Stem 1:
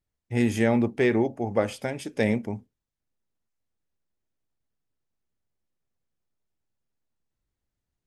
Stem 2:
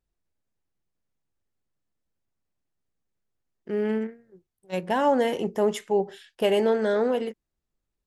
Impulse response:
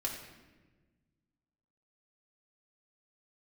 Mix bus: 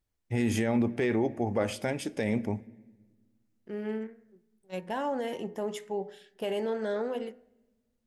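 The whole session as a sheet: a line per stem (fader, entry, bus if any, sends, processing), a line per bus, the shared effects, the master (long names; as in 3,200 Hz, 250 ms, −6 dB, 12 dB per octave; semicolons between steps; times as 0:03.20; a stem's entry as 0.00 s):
0.0 dB, 0.00 s, send −20 dB, no processing
−8.0 dB, 0.00 s, send −22 dB, hum removal 83.81 Hz, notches 25; brickwall limiter −16 dBFS, peak gain reduction 4.5 dB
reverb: on, RT60 1.3 s, pre-delay 4 ms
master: brickwall limiter −17.5 dBFS, peak gain reduction 9 dB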